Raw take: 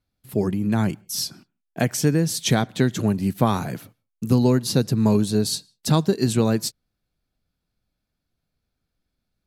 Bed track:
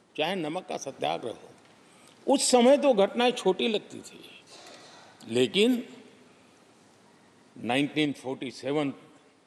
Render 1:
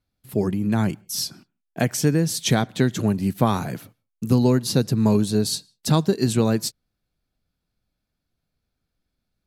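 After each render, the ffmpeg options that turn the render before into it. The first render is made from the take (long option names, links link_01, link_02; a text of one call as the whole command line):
ffmpeg -i in.wav -af anull out.wav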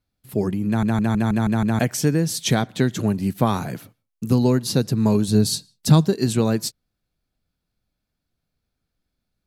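ffmpeg -i in.wav -filter_complex "[0:a]asettb=1/sr,asplit=3[link_01][link_02][link_03];[link_01]atrim=end=5.284[link_04];[link_02]atrim=start=5.28:end=6.08,asetpts=PTS-STARTPTS,afade=type=in:duration=0.004:curve=qsin,afade=type=out:start_time=0.796:duration=0.004:curve=qsin,bass=frequency=250:gain=7,treble=frequency=4000:gain=2[link_05];[link_03]atrim=start=6.076[link_06];[link_04][link_05]acrossfade=duration=0.004:curve1=hsin:curve2=qsin[link_07];[link_07][link_06]acrossfade=duration=0.004:curve1=qsin:curve2=hsin,asplit=8[link_08][link_09][link_10][link_11][link_12][link_13][link_14][link_15];[link_08]atrim=end=0.832[link_16];[link_09]atrim=start=0.668:end=0.832[link_17];[link_10]atrim=start=0.668:end=0.832[link_18];[link_11]atrim=start=0.668:end=0.832[link_19];[link_12]atrim=start=0.668:end=0.832[link_20];[link_13]atrim=start=0.668:end=0.832[link_21];[link_14]atrim=start=0.668:end=0.832[link_22];[link_15]atrim=start=1.788[link_23];[link_16][link_17]acrossfade=duration=0.004:curve1=hsin:curve2=hsin[link_24];[link_24][link_18]acrossfade=duration=0.004:curve1=hsin:curve2=hsin[link_25];[link_25][link_19]acrossfade=duration=0.004:curve1=hsin:curve2=hsin[link_26];[link_26][link_20]acrossfade=duration=0.004:curve1=hsin:curve2=hsin[link_27];[link_27][link_21]acrossfade=duration=0.004:curve1=hsin:curve2=hsin[link_28];[link_28][link_22]acrossfade=duration=0.004:curve1=hsin:curve2=hsin[link_29];[link_29][link_23]acrossfade=duration=0.004:curve1=hsin:curve2=hsin" out.wav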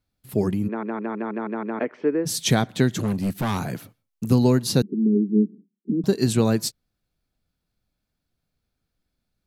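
ffmpeg -i in.wav -filter_complex "[0:a]asplit=3[link_01][link_02][link_03];[link_01]afade=type=out:start_time=0.67:duration=0.02[link_04];[link_02]highpass=frequency=290:width=0.5412,highpass=frequency=290:width=1.3066,equalizer=frequency=430:width_type=q:width=4:gain=4,equalizer=frequency=730:width_type=q:width=4:gain=-8,equalizer=frequency=1600:width_type=q:width=4:gain=-6,lowpass=frequency=2000:width=0.5412,lowpass=frequency=2000:width=1.3066,afade=type=in:start_time=0.67:duration=0.02,afade=type=out:start_time=2.25:duration=0.02[link_05];[link_03]afade=type=in:start_time=2.25:duration=0.02[link_06];[link_04][link_05][link_06]amix=inputs=3:normalize=0,asettb=1/sr,asplit=3[link_07][link_08][link_09];[link_07]atrim=end=2.954[link_10];[link_08]atrim=start=2.95:end=4.31,asetpts=PTS-STARTPTS,afade=type=in:duration=0.004:curve=qsin,afade=type=out:start_time=1.356:duration=0.004:curve=qsin,asoftclip=type=hard:threshold=-19.5dB[link_11];[link_09]atrim=start=4.306[link_12];[link_10][link_11]acrossfade=duration=0.004:curve1=hsin:curve2=qsin[link_13];[link_13][link_12]acrossfade=duration=0.004:curve1=qsin:curve2=hsin,asettb=1/sr,asplit=3[link_14][link_15][link_16];[link_14]atrim=end=4.824[link_17];[link_15]atrim=start=4.82:end=6.04,asetpts=PTS-STARTPTS,afade=type=in:duration=0.004:curve=qsin,afade=type=out:start_time=1.216:duration=0.004:curve=qsin,asuperpass=centerf=280:order=12:qfactor=1.2[link_18];[link_16]atrim=start=6.036[link_19];[link_17][link_18]acrossfade=duration=0.004:curve1=hsin:curve2=qsin[link_20];[link_20][link_19]acrossfade=duration=0.004:curve1=qsin:curve2=hsin" out.wav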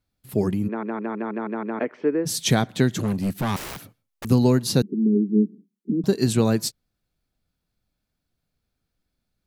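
ffmpeg -i in.wav -filter_complex "[0:a]asettb=1/sr,asplit=3[link_01][link_02][link_03];[link_01]atrim=end=3.564[link_04];[link_02]atrim=start=3.56:end=4.25,asetpts=PTS-STARTPTS,afade=type=in:duration=0.004:curve=qsin,afade=type=out:start_time=0.686:duration=0.004:curve=qsin,aeval=exprs='(mod(31.6*val(0)+1,2)-1)/31.6':channel_layout=same[link_05];[link_03]atrim=start=4.246[link_06];[link_04][link_05]acrossfade=duration=0.004:curve1=hsin:curve2=qsin[link_07];[link_07][link_06]acrossfade=duration=0.004:curve1=qsin:curve2=hsin" out.wav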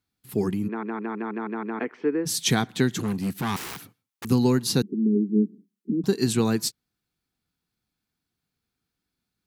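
ffmpeg -i in.wav -af "highpass=frequency=170:poles=1,equalizer=frequency=590:width=4.5:gain=-13.5" out.wav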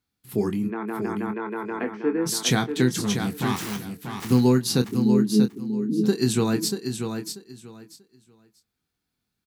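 ffmpeg -i in.wav -filter_complex "[0:a]asplit=2[link_01][link_02];[link_02]adelay=24,volume=-8dB[link_03];[link_01][link_03]amix=inputs=2:normalize=0,asplit=2[link_04][link_05];[link_05]aecho=0:1:638|1276|1914:0.447|0.0893|0.0179[link_06];[link_04][link_06]amix=inputs=2:normalize=0" out.wav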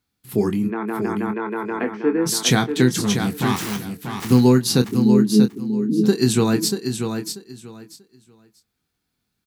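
ffmpeg -i in.wav -af "volume=4.5dB" out.wav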